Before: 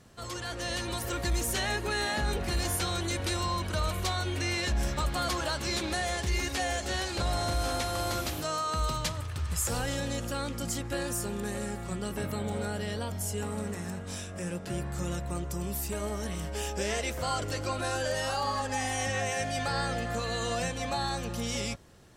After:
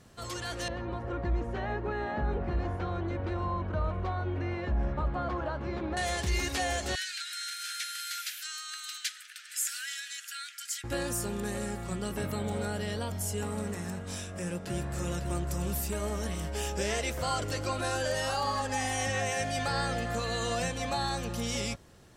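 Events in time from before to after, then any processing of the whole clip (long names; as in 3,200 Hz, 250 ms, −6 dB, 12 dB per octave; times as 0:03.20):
0:00.68–0:05.97: low-pass filter 1,200 Hz
0:06.95–0:10.84: Butterworth high-pass 1,400 Hz 96 dB per octave
0:14.20–0:15.24: delay throw 550 ms, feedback 60%, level −7 dB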